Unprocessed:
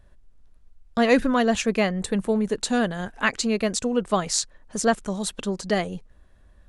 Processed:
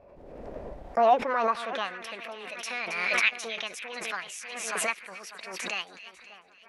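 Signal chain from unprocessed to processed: formant shift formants +6 st; on a send: two-band feedback delay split 2 kHz, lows 593 ms, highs 273 ms, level -13.5 dB; on the sum: band-pass sweep 550 Hz -> 2.5 kHz, 0.69–2.32 s; swell ahead of each attack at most 35 dB/s

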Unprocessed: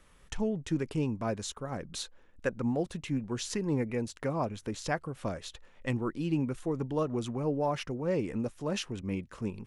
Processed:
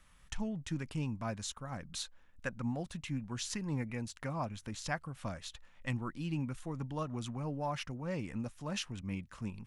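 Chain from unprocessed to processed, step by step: peaking EQ 410 Hz -13 dB 1 oct; trim -2 dB

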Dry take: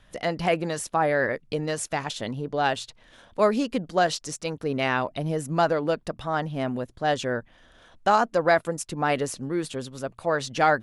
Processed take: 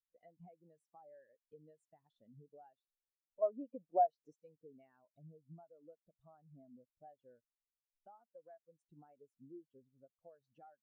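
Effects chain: compression 16:1, threshold -31 dBFS, peak gain reduction 17 dB; 3.42–4.34 s: peaking EQ 780 Hz +12 dB 2.2 oct; spectral contrast expander 2.5:1; trim -8.5 dB

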